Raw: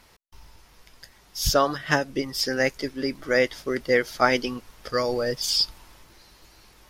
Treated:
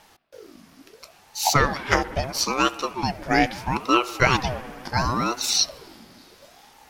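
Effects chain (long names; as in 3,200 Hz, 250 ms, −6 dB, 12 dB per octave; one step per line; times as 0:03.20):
spring reverb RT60 2.7 s, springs 59 ms, chirp 25 ms, DRR 15 dB
ring modulator whose carrier an LFO sweeps 540 Hz, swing 60%, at 0.74 Hz
level +4.5 dB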